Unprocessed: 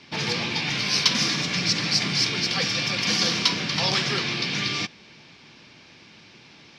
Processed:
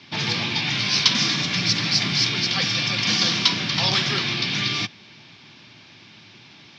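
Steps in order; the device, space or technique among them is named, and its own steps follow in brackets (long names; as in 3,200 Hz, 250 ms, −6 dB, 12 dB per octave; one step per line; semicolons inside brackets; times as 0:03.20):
car door speaker (loudspeaker in its box 82–6,600 Hz, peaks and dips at 110 Hz +7 dB, 480 Hz −7 dB, 3,500 Hz +4 dB)
level +1.5 dB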